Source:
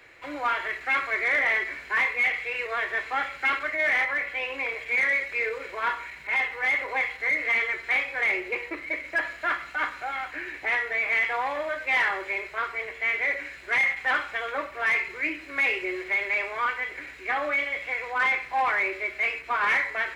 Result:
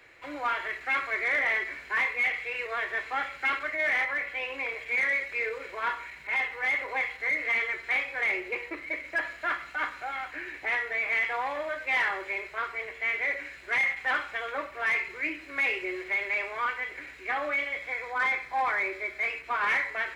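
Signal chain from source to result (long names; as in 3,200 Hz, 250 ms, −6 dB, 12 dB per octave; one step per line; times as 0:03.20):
0:17.79–0:19.30: notch filter 2,800 Hz, Q 5.9
level −3 dB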